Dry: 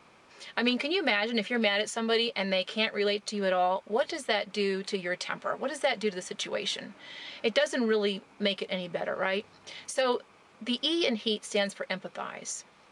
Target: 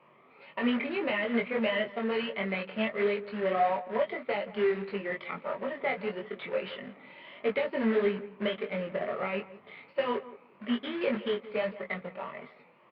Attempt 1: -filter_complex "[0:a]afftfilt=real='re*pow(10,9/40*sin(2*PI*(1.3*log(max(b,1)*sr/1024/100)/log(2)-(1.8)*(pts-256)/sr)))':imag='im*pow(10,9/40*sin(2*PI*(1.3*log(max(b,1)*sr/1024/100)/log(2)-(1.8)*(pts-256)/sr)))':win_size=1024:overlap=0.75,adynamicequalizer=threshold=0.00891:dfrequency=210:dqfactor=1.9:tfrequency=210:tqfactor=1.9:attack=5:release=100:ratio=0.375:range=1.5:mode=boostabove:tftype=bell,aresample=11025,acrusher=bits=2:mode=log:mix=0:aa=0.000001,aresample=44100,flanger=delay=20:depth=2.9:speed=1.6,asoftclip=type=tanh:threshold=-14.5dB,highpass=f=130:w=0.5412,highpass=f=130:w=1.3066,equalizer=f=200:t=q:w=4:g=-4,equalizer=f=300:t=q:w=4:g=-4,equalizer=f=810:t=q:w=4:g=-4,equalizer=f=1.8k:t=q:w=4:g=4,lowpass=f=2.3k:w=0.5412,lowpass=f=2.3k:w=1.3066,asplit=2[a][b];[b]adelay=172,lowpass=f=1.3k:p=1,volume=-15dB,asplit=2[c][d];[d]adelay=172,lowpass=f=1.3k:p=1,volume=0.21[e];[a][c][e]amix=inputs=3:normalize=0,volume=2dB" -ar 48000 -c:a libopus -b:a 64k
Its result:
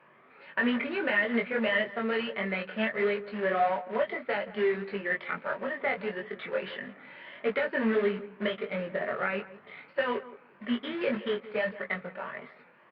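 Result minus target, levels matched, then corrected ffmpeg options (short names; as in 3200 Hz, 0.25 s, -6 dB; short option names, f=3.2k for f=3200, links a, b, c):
2000 Hz band +3.5 dB
-filter_complex "[0:a]afftfilt=real='re*pow(10,9/40*sin(2*PI*(1.3*log(max(b,1)*sr/1024/100)/log(2)-(1.8)*(pts-256)/sr)))':imag='im*pow(10,9/40*sin(2*PI*(1.3*log(max(b,1)*sr/1024/100)/log(2)-(1.8)*(pts-256)/sr)))':win_size=1024:overlap=0.75,adynamicequalizer=threshold=0.00891:dfrequency=210:dqfactor=1.9:tfrequency=210:tqfactor=1.9:attack=5:release=100:ratio=0.375:range=1.5:mode=boostabove:tftype=bell,asuperstop=centerf=1600:order=4:qfactor=2.3,aresample=11025,acrusher=bits=2:mode=log:mix=0:aa=0.000001,aresample=44100,flanger=delay=20:depth=2.9:speed=1.6,asoftclip=type=tanh:threshold=-14.5dB,highpass=f=130:w=0.5412,highpass=f=130:w=1.3066,equalizer=f=200:t=q:w=4:g=-4,equalizer=f=300:t=q:w=4:g=-4,equalizer=f=810:t=q:w=4:g=-4,equalizer=f=1.8k:t=q:w=4:g=4,lowpass=f=2.3k:w=0.5412,lowpass=f=2.3k:w=1.3066,asplit=2[a][b];[b]adelay=172,lowpass=f=1.3k:p=1,volume=-15dB,asplit=2[c][d];[d]adelay=172,lowpass=f=1.3k:p=1,volume=0.21[e];[a][c][e]amix=inputs=3:normalize=0,volume=2dB" -ar 48000 -c:a libopus -b:a 64k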